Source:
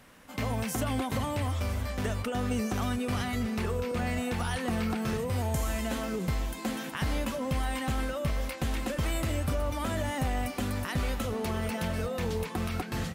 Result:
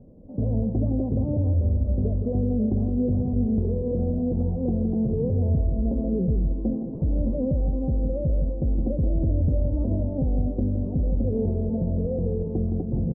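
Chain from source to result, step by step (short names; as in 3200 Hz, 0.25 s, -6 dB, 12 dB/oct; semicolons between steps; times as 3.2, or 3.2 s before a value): self-modulated delay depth 0.19 ms; steep low-pass 580 Hz 36 dB/oct; low shelf 230 Hz +6.5 dB; limiter -23.5 dBFS, peak gain reduction 6 dB; echo 0.167 s -8 dB; gain +6.5 dB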